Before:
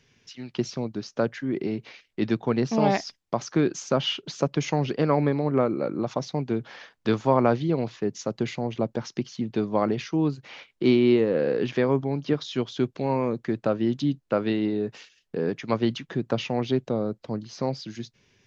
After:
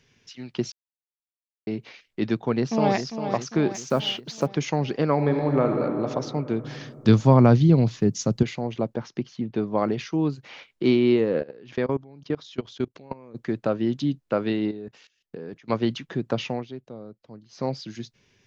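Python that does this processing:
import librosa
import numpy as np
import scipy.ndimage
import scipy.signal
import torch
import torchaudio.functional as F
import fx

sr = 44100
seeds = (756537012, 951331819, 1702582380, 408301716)

y = fx.echo_throw(x, sr, start_s=2.38, length_s=0.59, ms=400, feedback_pct=55, wet_db=-8.5)
y = fx.block_float(y, sr, bits=7, at=(3.74, 4.47))
y = fx.reverb_throw(y, sr, start_s=5.13, length_s=0.63, rt60_s=3.0, drr_db=2.5)
y = fx.bass_treble(y, sr, bass_db=14, treble_db=9, at=(6.64, 8.43))
y = fx.high_shelf(y, sr, hz=4200.0, db=-11.5, at=(8.94, 9.78))
y = fx.level_steps(y, sr, step_db=23, at=(11.39, 13.34), fade=0.02)
y = fx.level_steps(y, sr, step_db=18, at=(14.71, 15.7))
y = fx.edit(y, sr, fx.silence(start_s=0.72, length_s=0.95),
    fx.fade_down_up(start_s=16.5, length_s=1.15, db=-13.5, fade_s=0.16), tone=tone)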